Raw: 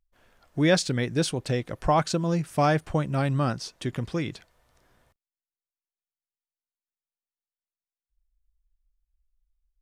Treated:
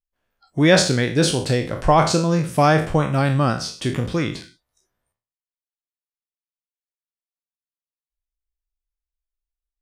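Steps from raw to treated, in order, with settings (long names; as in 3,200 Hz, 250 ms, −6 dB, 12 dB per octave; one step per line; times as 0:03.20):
peak hold with a decay on every bin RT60 0.43 s
noise reduction from a noise print of the clip's start 22 dB
level +6 dB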